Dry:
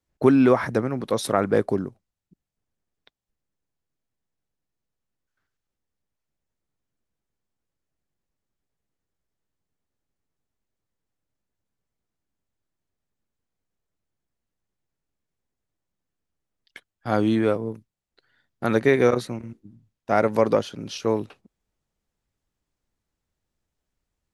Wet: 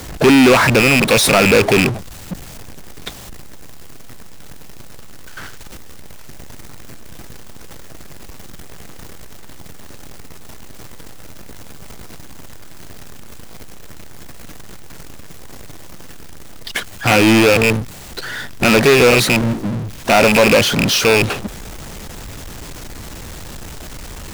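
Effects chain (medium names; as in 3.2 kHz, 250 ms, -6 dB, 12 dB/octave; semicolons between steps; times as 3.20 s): rattle on loud lows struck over -32 dBFS, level -10 dBFS; power-law waveshaper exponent 0.35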